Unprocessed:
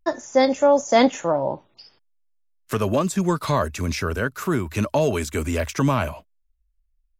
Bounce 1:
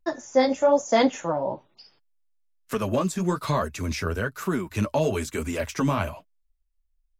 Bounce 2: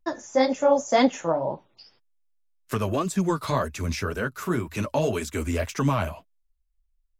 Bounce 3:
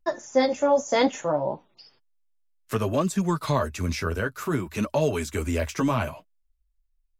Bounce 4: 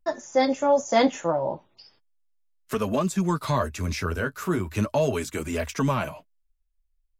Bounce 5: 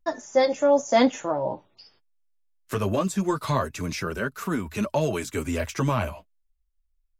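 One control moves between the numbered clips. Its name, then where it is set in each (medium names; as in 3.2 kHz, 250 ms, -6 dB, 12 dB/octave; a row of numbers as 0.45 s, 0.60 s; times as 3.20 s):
flange, rate: 1.1 Hz, 1.9 Hz, 0.62 Hz, 0.35 Hz, 0.22 Hz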